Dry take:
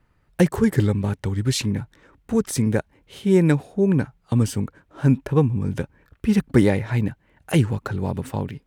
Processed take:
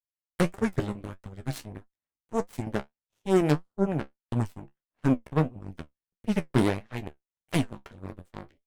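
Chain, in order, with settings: Chebyshev shaper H 4 -16 dB, 5 -19 dB, 7 -13 dB, 8 -33 dB, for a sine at -3.5 dBFS; flange 1.6 Hz, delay 8.9 ms, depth 6.1 ms, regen +46%; trim -4 dB

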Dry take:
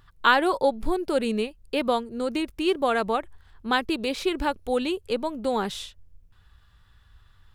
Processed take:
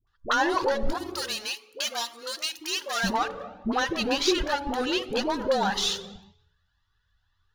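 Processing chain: treble shelf 3.7 kHz +10 dB; waveshaping leveller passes 5; 0.92–3.03 s: differentiator; de-hum 141 Hz, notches 8; reverberation RT60 1.0 s, pre-delay 3 ms, DRR 15.5 dB; compression 5:1, threshold -12 dBFS, peak gain reduction 13 dB; phase dispersion highs, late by 73 ms, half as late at 560 Hz; Shepard-style flanger rising 1.9 Hz; trim -6 dB

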